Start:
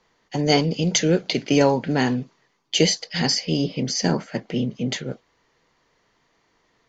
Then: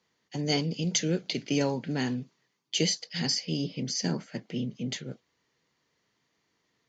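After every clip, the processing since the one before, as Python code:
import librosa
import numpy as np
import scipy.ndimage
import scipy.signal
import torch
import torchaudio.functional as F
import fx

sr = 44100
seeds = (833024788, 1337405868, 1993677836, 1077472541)

y = scipy.signal.sosfilt(scipy.signal.butter(2, 100.0, 'highpass', fs=sr, output='sos'), x)
y = fx.peak_eq(y, sr, hz=820.0, db=-8.0, octaves=2.5)
y = F.gain(torch.from_numpy(y), -5.5).numpy()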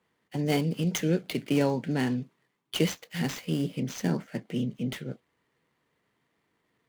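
y = scipy.signal.medfilt(x, 9)
y = F.gain(torch.from_numpy(y), 2.5).numpy()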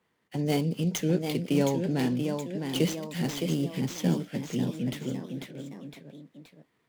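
y = fx.echo_pitch(x, sr, ms=771, semitones=1, count=3, db_per_echo=-6.0)
y = fx.dynamic_eq(y, sr, hz=1700.0, q=0.95, threshold_db=-45.0, ratio=4.0, max_db=-5)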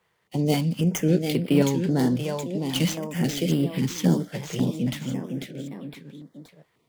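y = fx.filter_held_notch(x, sr, hz=3.7, low_hz=260.0, high_hz=6400.0)
y = F.gain(torch.from_numpy(y), 5.5).numpy()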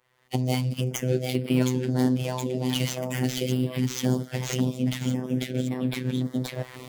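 y = fx.recorder_agc(x, sr, target_db=-16.5, rise_db_per_s=31.0, max_gain_db=30)
y = fx.robotise(y, sr, hz=127.0)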